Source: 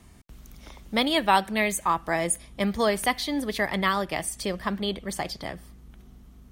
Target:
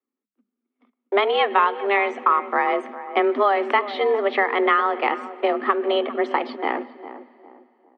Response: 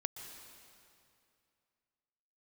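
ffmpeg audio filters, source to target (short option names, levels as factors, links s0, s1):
-filter_complex "[0:a]lowpass=f=2800:w=0.5412,lowpass=f=2800:w=1.3066,agate=range=0.00447:threshold=0.0112:ratio=16:detection=peak,equalizer=f=1100:t=o:w=0.42:g=6.5,acompressor=threshold=0.0447:ratio=4,afreqshift=220,atempo=0.9,asplit=2[s0][s1];[s1]adelay=367,lowpass=f=1100:p=1,volume=0.251,asplit=2[s2][s3];[s3]adelay=367,lowpass=f=1100:p=1,volume=0.39,asplit=2[s4][s5];[s5]adelay=367,lowpass=f=1100:p=1,volume=0.39,asplit=2[s6][s7];[s7]adelay=367,lowpass=f=1100:p=1,volume=0.39[s8];[s0][s2][s4][s6][s8]amix=inputs=5:normalize=0,asplit=2[s9][s10];[1:a]atrim=start_sample=2205[s11];[s10][s11]afir=irnorm=-1:irlink=0,volume=0.224[s12];[s9][s12]amix=inputs=2:normalize=0,asetrate=40043,aresample=44100,volume=2.82"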